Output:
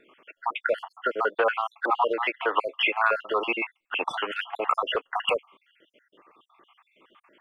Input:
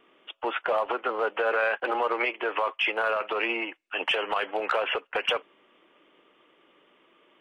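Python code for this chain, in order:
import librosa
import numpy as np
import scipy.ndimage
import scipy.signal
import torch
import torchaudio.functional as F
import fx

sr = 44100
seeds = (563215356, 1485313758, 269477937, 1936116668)

y = fx.spec_dropout(x, sr, seeds[0], share_pct=60)
y = fx.peak_eq(y, sr, hz=1100.0, db=6.0, octaves=0.57)
y = F.gain(torch.from_numpy(y), 3.5).numpy()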